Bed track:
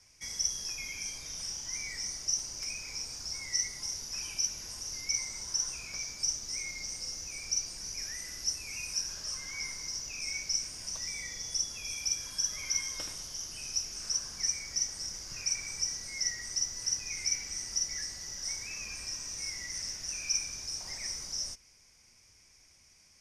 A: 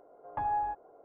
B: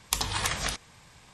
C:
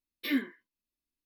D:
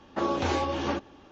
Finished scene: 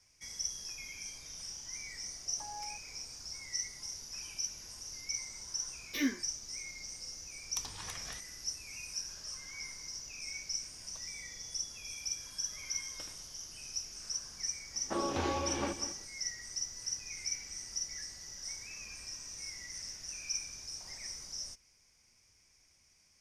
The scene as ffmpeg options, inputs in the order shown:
-filter_complex "[0:a]volume=-6dB[a];[1:a]aemphasis=mode=production:type=75fm[b];[4:a]aecho=1:1:196:0.266[c];[b]atrim=end=1.04,asetpts=PTS-STARTPTS,volume=-15dB,afade=t=in:d=0.004:c=hsin,afade=t=out:st=1.036:d=0.004:c=hsin,adelay=2030[d];[3:a]atrim=end=1.25,asetpts=PTS-STARTPTS,volume=-3dB,afade=t=in:d=0.004:c=hsin,afade=t=out:st=1.246:d=0.004:c=hsin,adelay=5700[e];[2:a]atrim=end=1.33,asetpts=PTS-STARTPTS,volume=-17dB,afade=t=in:d=0.004:c=hsin,afade=t=out:st=1.326:d=0.004:c=hsin,adelay=7440[f];[c]atrim=end=1.31,asetpts=PTS-STARTPTS,volume=-7dB,afade=t=in:d=0.004:c=hsin,afade=t=out:st=1.306:d=0.004:c=hsin,adelay=14740[g];[a][d][e][f][g]amix=inputs=5:normalize=0"

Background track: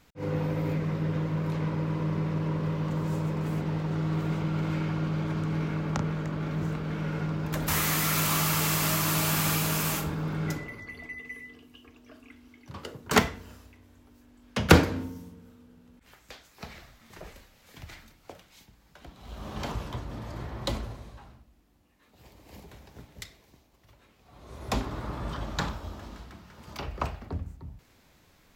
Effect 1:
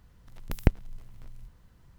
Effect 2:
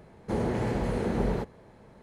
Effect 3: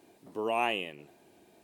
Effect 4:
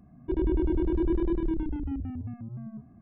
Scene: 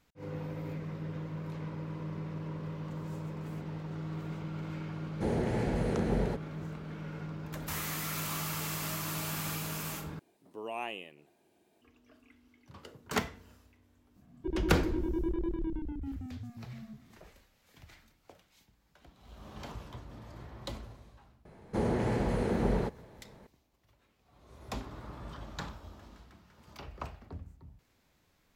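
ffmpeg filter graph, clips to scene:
-filter_complex "[2:a]asplit=2[a][b];[0:a]volume=-10dB[c];[a]equalizer=f=1.1k:w=4:g=-8[d];[c]asplit=2[e][f];[e]atrim=end=10.194[g];[3:a]atrim=end=1.63,asetpts=PTS-STARTPTS,volume=-9dB[h];[f]atrim=start=11.816[i];[d]atrim=end=2.02,asetpts=PTS-STARTPTS,volume=-2.5dB,afade=t=in:d=0.004:c=hsin,afade=t=out:st=2.016:d=0.004:c=hsin,adelay=4920[j];[4:a]atrim=end=3.01,asetpts=PTS-STARTPTS,volume=-6.5dB,afade=t=in:d=0.004:c=hsin,afade=t=out:st=3.006:d=0.004:c=hsin,adelay=14160[k];[b]atrim=end=2.02,asetpts=PTS-STARTPTS,volume=-1.5dB,afade=t=in:d=0.004:c=hsin,afade=t=out:st=2.016:d=0.004:c=hsin,adelay=21450[l];[g][h]acrossfade=d=0.004:c1=hsin:c2=hsin[m];[m][i]acrossfade=d=0.004:c1=hsin:c2=hsin[n];[n][j][k][l]amix=inputs=4:normalize=0"

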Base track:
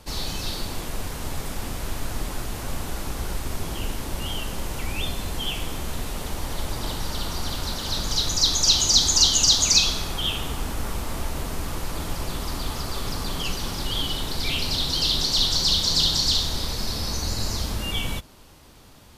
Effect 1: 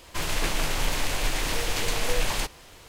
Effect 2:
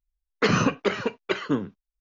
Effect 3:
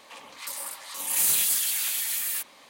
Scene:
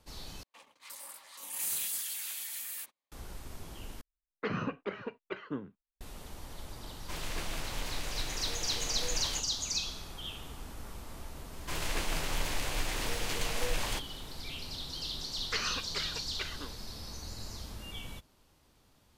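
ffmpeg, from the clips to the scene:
-filter_complex "[2:a]asplit=2[a][b];[1:a]asplit=2[c][d];[0:a]volume=-16dB[e];[3:a]agate=range=-31dB:threshold=-47dB:ratio=16:release=100:detection=peak[f];[a]lowpass=2.7k[g];[b]bandpass=f=5.5k:t=q:w=0.56:csg=0[h];[e]asplit=3[i][j][k];[i]atrim=end=0.434[l];[f]atrim=end=2.69,asetpts=PTS-STARTPTS,volume=-11.5dB[m];[j]atrim=start=3.116:end=4.014[n];[g]atrim=end=2,asetpts=PTS-STARTPTS,volume=-13dB[o];[k]atrim=start=6.006[p];[c]atrim=end=2.88,asetpts=PTS-STARTPTS,volume=-11.5dB,afade=t=in:d=0.004:c=hsin,afade=t=out:st=2.876:d=0.004:c=hsin,adelay=6940[q];[d]atrim=end=2.88,asetpts=PTS-STARTPTS,volume=-7dB,afade=t=in:d=0.004:c=hsin,afade=t=out:st=2.876:d=0.004:c=hsin,adelay=11530[r];[h]atrim=end=2,asetpts=PTS-STARTPTS,volume=-4.5dB,afade=t=in:d=0.004:c=hsin,afade=t=out:st=1.996:d=0.004:c=hsin,adelay=15100[s];[l][m]acrossfade=d=0.004:c1=hsin:c2=hsin[t];[t][n]acrossfade=d=0.004:c1=hsin:c2=hsin[u];[u][o]acrossfade=d=0.004:c1=hsin:c2=hsin[v];[v][p]acrossfade=d=0.004:c1=hsin:c2=hsin[w];[w][q][r][s]amix=inputs=4:normalize=0"

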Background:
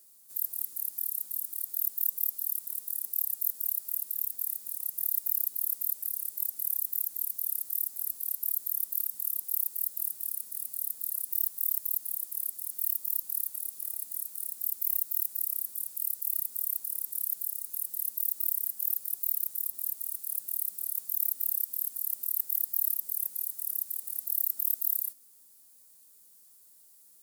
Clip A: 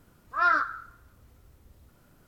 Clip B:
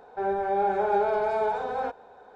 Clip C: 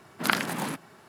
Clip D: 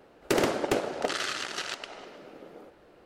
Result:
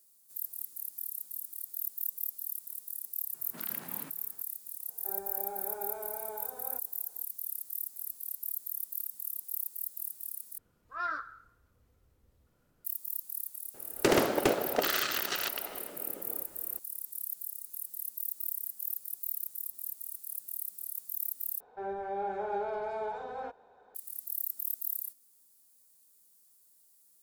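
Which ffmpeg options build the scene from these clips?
-filter_complex "[2:a]asplit=2[a][b];[0:a]volume=-6dB[c];[3:a]acompressor=threshold=-32dB:ratio=10:attack=4.3:release=78:knee=1:detection=peak[d];[1:a]equalizer=f=480:t=o:w=0.23:g=6.5[e];[c]asplit=3[f][g][h];[f]atrim=end=10.584[i];[e]atrim=end=2.27,asetpts=PTS-STARTPTS,volume=-12dB[j];[g]atrim=start=12.846:end=21.604[k];[b]atrim=end=2.35,asetpts=PTS-STARTPTS,volume=-10dB[l];[h]atrim=start=23.946[m];[d]atrim=end=1.08,asetpts=PTS-STARTPTS,volume=-12dB,afade=t=in:d=0.004:c=hsin,afade=t=out:st=1.076:d=0.004:c=hsin,adelay=3340[n];[a]atrim=end=2.35,asetpts=PTS-STARTPTS,volume=-17dB,afade=t=in:d=0.004:c=hsin,afade=t=out:st=2.346:d=0.004:c=hsin,adelay=4880[o];[4:a]atrim=end=3.05,asetpts=PTS-STARTPTS,afade=t=in:d=0.004:c=hsin,afade=t=out:st=3.046:d=0.004:c=hsin,adelay=13740[p];[i][j]acrossfade=d=0.004:c1=hsin:c2=hsin[q];[q][k]acrossfade=d=0.004:c1=hsin:c2=hsin[r];[r][l]acrossfade=d=0.004:c1=hsin:c2=hsin[s];[s][m]acrossfade=d=0.004:c1=hsin:c2=hsin[t];[t][n][o][p]amix=inputs=4:normalize=0"

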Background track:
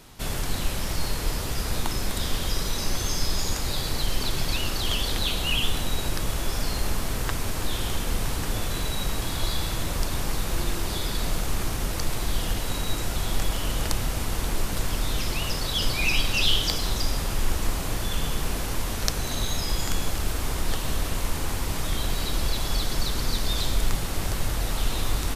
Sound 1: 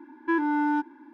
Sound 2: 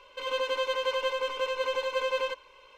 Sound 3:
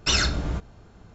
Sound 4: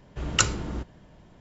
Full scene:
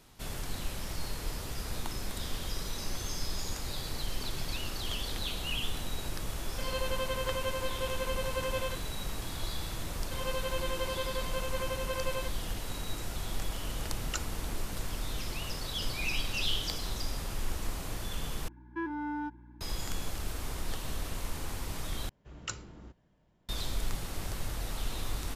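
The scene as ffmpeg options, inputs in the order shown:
-filter_complex "[2:a]asplit=2[a][b];[4:a]asplit=2[c][d];[0:a]volume=-9.5dB[e];[1:a]aeval=exprs='val(0)+0.00891*(sin(2*PI*60*n/s)+sin(2*PI*2*60*n/s)/2+sin(2*PI*3*60*n/s)/3+sin(2*PI*4*60*n/s)/4+sin(2*PI*5*60*n/s)/5)':c=same[f];[e]asplit=3[g][h][i];[g]atrim=end=18.484[j];[f]atrim=end=1.13,asetpts=PTS-STARTPTS,volume=-11dB[k];[h]atrim=start=19.606:end=22.094[l];[d]atrim=end=1.4,asetpts=PTS-STARTPTS,volume=-17dB[m];[i]atrim=start=23.486[n];[a]atrim=end=2.77,asetpts=PTS-STARTPTS,volume=-6dB,afade=t=in:d=0.004:c=hsin,afade=t=out:st=2.766:d=0.004:c=hsin,adelay=6410[o];[b]atrim=end=2.77,asetpts=PTS-STARTPTS,volume=-7dB,afade=t=in:d=0.004:c=hsin,afade=t=out:st=2.766:d=0.004:c=hsin,adelay=438354S[p];[c]atrim=end=1.4,asetpts=PTS-STARTPTS,volume=-15.5dB,afade=t=in:d=0.004:c=hsin,afade=t=out:st=1.396:d=0.004:c=hsin,adelay=13750[q];[j][k]acrossfade=d=0.004:c1=hsin:c2=hsin[r];[r][l]acrossfade=d=0.004:c1=hsin:c2=hsin[s];[s][m]acrossfade=d=0.004:c1=hsin:c2=hsin[t];[t][n]acrossfade=d=0.004:c1=hsin:c2=hsin[u];[u][o][p][q]amix=inputs=4:normalize=0"

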